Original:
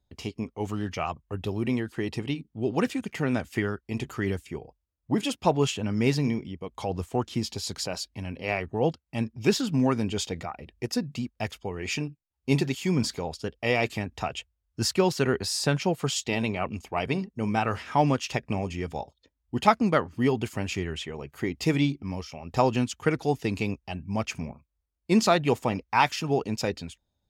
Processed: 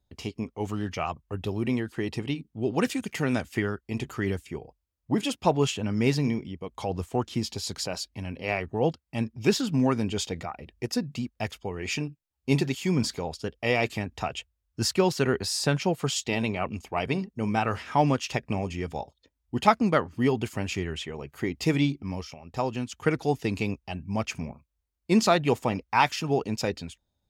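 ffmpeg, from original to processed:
-filter_complex "[0:a]asettb=1/sr,asplit=3[a][b][c];[a]atrim=end=2.824[d];[b]atrim=start=2.82:end=3.43,asetpts=PTS-STARTPTS,afade=t=in:d=0.004:c=qsin,afade=t=out:st=0.606:d=0.004:c=qsin,highshelf=f=3.6k:g=7.5[e];[c]atrim=start=3.426[f];[d][e]acrossfade=d=0.004:c1=hsin:c2=qsin[g];[g][f]acrossfade=d=0.004:c1=qsin:c2=hsin,asplit=3[h][i][j];[h]atrim=end=22.342[k];[i]atrim=start=22.338:end=22.922,asetpts=PTS-STARTPTS,volume=-6dB[l];[j]atrim=start=22.918[m];[k][l]acrossfade=d=0.004:c1=hsin:c2=hsin[n];[n][m]acrossfade=d=0.004:c1=hsin:c2=hsin"

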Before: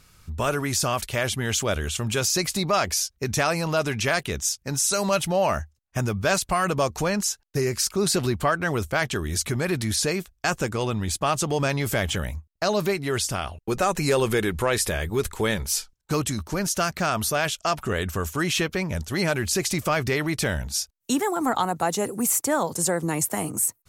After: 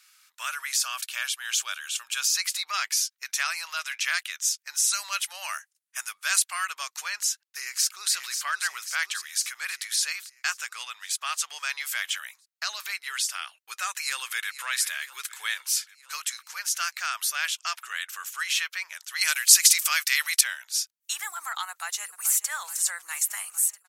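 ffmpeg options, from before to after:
-filter_complex "[0:a]asettb=1/sr,asplit=3[a][b][c];[a]atrim=end=0.824[d];[b]atrim=start=0.82:end=2.35,asetpts=PTS-STARTPTS,afade=t=in:d=0.004:c=qsin,afade=t=out:st=1.526:d=0.004:c=qsin,bandreject=f=2k:w=6.2[e];[c]atrim=start=2.346[f];[d][e]acrossfade=d=0.004:c1=hsin:c2=qsin[g];[g][f]acrossfade=d=0.004:c1=qsin:c2=hsin,asettb=1/sr,asplit=3[h][i][j];[h]atrim=end=5.254[k];[i]atrim=start=5.25:end=6.42,asetpts=PTS-STARTPTS,afade=t=in:d=0.004:c=qsin,afade=t=out:st=1.166:d=0.004:c=qsin,equalizer=f=10k:w=1.3:g=10.5[l];[j]atrim=start=6.416[m];[k][l]acrossfade=d=0.004:c1=hsin:c2=qsin[n];[n][m]acrossfade=d=0.004:c1=qsin:c2=hsin,asplit=2[o][p];[p]afade=t=in:st=7.18:d=0.01,afade=t=out:st=8.13:d=0.01,aecho=0:1:540|1080|1620|2160|2700|3240|3780|4320:0.421697|0.253018|0.151811|0.0910864|0.0546519|0.0327911|0.0196747|0.0118048[q];[o][q]amix=inputs=2:normalize=0,asplit=2[r][s];[s]afade=t=in:st=13.91:d=0.01,afade=t=out:st=14.65:d=0.01,aecho=0:1:480|960|1440|1920|2400|2880|3360:0.16788|0.109122|0.0709295|0.0461042|0.0299677|0.019479|0.0126614[t];[r][t]amix=inputs=2:normalize=0,asettb=1/sr,asplit=3[u][v][w];[u]atrim=end=19.214[x];[v]atrim=start=19.21:end=20.41,asetpts=PTS-STARTPTS,afade=t=in:d=0.004:c=qsin,afade=t=out:st=1.196:d=0.004:c=qsin,equalizer=f=14k:t=o:w=2.5:g=14[y];[w]atrim=start=20.406[z];[x][y]acrossfade=d=0.004:c1=hsin:c2=qsin[aa];[aa][z]acrossfade=d=0.004:c1=qsin:c2=hsin,asplit=2[ab][ac];[ac]afade=t=in:st=21.69:d=0.01,afade=t=out:st=22.47:d=0.01,aecho=0:1:430|860|1290|1720|2150|2580|3010|3440|3870|4300|4730:0.211349|0.158512|0.118884|0.0891628|0.0668721|0.0501541|0.0376156|0.0282117|0.0211588|0.0158691|0.0119018[ad];[ab][ad]amix=inputs=2:normalize=0,highpass=f=1.4k:w=0.5412,highpass=f=1.4k:w=1.3066"

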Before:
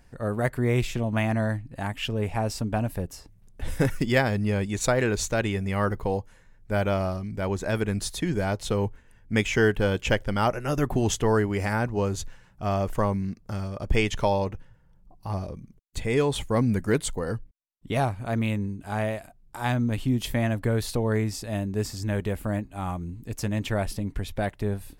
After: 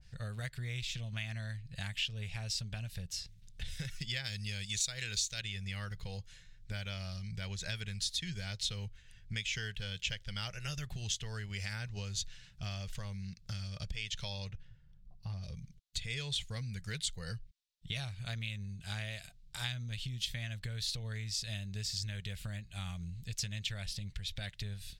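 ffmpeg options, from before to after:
-filter_complex "[0:a]asettb=1/sr,asplit=3[a][b][c];[a]atrim=end=4.244[d];[b]atrim=start=4.24:end=5.41,asetpts=PTS-STARTPTS,afade=t=in:d=0.004:c=qsin,afade=t=out:st=1.166:d=0.004:c=qsin,highshelf=f=3.3k:g=10.5[e];[c]atrim=start=5.406[f];[d][e]acrossfade=d=0.004:c1=hsin:c2=qsin[g];[g][f]acrossfade=d=0.004:c1=qsin:c2=hsin,asplit=3[h][i][j];[h]afade=t=out:st=14.5:d=0.02[k];[i]highshelf=f=2.7k:g=-10.5,afade=t=in:st=14.5:d=0.02,afade=t=out:st=15.42:d=0.02[l];[j]afade=t=in:st=15.42:d=0.02[m];[k][l][m]amix=inputs=3:normalize=0,firequalizer=gain_entry='entry(160,0);entry(270,-23);entry(490,-13);entry(980,-16);entry(1500,-5);entry(3700,9);entry(11000,-8)':delay=0.05:min_phase=1,acompressor=threshold=-36dB:ratio=12,adynamicequalizer=threshold=0.00126:dfrequency=1600:dqfactor=0.7:tfrequency=1600:tqfactor=0.7:attack=5:release=100:ratio=0.375:range=3:mode=boostabove:tftype=highshelf,volume=-1.5dB"

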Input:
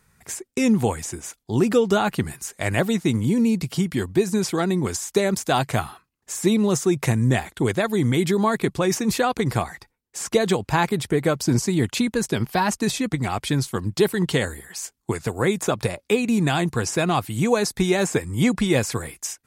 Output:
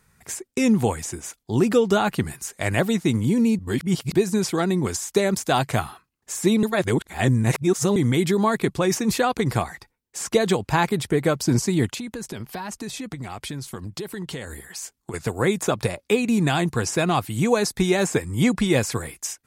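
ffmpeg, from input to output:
-filter_complex "[0:a]asettb=1/sr,asplit=3[a][b][c];[a]atrim=end=11.944[d];[b]atrim=start=11.94:end=15.14,asetpts=PTS-STARTPTS,afade=t=in:d=0.004:c=qsin,afade=t=out:st=3.196:d=0.004:c=qsin,acompressor=threshold=-29dB:ratio=6:attack=3.2:release=140:knee=1:detection=peak[e];[c]atrim=start=15.136[f];[d][e]acrossfade=d=0.004:c1=hsin:c2=qsin[g];[g][f]acrossfade=d=0.004:c1=qsin:c2=hsin,asplit=5[h][i][j][k][l];[h]atrim=end=3.592[m];[i]atrim=start=3.588:end=4.142,asetpts=PTS-STARTPTS,areverse[n];[j]atrim=start=4.138:end=6.632[o];[k]atrim=start=6.628:end=7.962,asetpts=PTS-STARTPTS,areverse[p];[l]atrim=start=7.958[q];[m][n]acrossfade=d=0.004:c1=hsin:c2=hsin[r];[r][o]acrossfade=d=0.004:c1=hsin:c2=hsin[s];[s][p]acrossfade=d=0.004:c1=hsin:c2=hsin[t];[t][q]acrossfade=d=0.004:c1=hsin:c2=hsin"

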